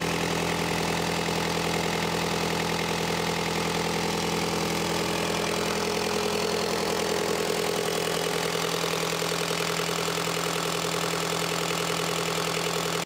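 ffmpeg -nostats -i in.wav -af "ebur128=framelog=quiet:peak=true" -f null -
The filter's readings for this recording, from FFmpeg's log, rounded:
Integrated loudness:
  I:         -26.4 LUFS
  Threshold: -36.4 LUFS
Loudness range:
  LRA:         0.3 LU
  Threshold: -46.4 LUFS
  LRA low:   -26.5 LUFS
  LRA high:  -26.3 LUFS
True peak:
  Peak:      -13.8 dBFS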